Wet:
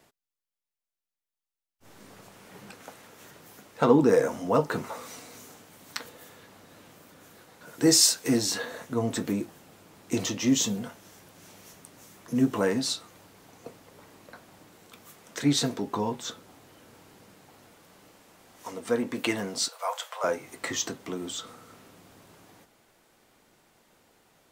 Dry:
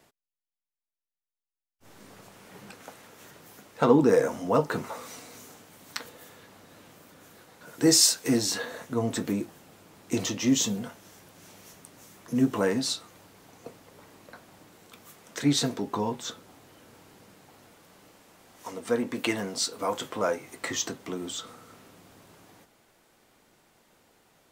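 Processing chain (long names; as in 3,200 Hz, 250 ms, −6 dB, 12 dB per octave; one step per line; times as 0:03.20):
0:19.68–0:20.24: Butterworth high-pass 570 Hz 48 dB per octave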